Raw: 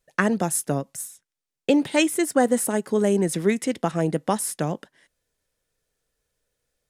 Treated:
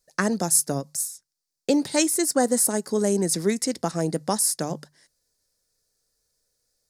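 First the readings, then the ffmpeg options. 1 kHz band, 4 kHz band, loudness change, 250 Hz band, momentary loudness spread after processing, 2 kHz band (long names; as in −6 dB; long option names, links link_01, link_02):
−2.5 dB, +2.5 dB, 0.0 dB, −2.0 dB, 9 LU, −4.0 dB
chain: -af "highshelf=frequency=3800:width_type=q:width=3:gain=7,bandreject=frequency=50:width_type=h:width=6,bandreject=frequency=100:width_type=h:width=6,bandreject=frequency=150:width_type=h:width=6,volume=-2dB"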